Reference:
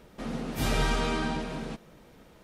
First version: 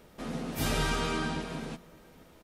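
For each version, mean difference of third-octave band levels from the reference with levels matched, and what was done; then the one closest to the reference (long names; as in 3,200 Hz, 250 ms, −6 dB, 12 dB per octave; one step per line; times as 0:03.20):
2.0 dB: high-shelf EQ 8,400 Hz +6 dB
mains-hum notches 60/120/180/240 Hz
double-tracking delay 12 ms −9 dB
slap from a distant wall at 140 metres, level −29 dB
level −2 dB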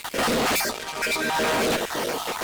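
13.5 dB: time-frequency cells dropped at random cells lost 38%
high-pass filter 440 Hz 12 dB per octave
compressor whose output falls as the input rises −43 dBFS, ratio −0.5
fuzz pedal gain 55 dB, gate −59 dBFS
level −8 dB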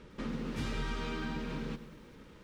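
5.0 dB: parametric band 700 Hz −14 dB 0.37 octaves
downward compressor 4 to 1, threshold −36 dBFS, peak gain reduction 11.5 dB
high-frequency loss of the air 76 metres
feedback echo at a low word length 104 ms, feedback 55%, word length 10 bits, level −14 dB
level +1.5 dB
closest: first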